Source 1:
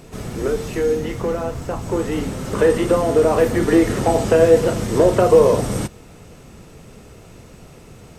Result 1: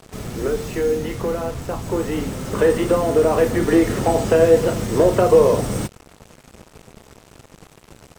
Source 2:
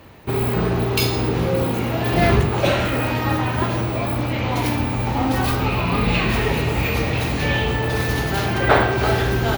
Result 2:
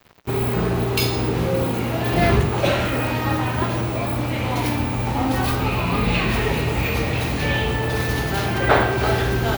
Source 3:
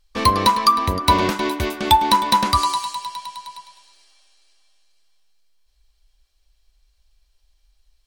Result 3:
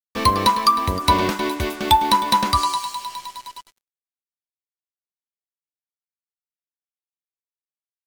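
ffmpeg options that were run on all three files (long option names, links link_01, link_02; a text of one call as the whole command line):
ffmpeg -i in.wav -af "acrusher=bits=5:mix=0:aa=0.5,volume=-1dB" out.wav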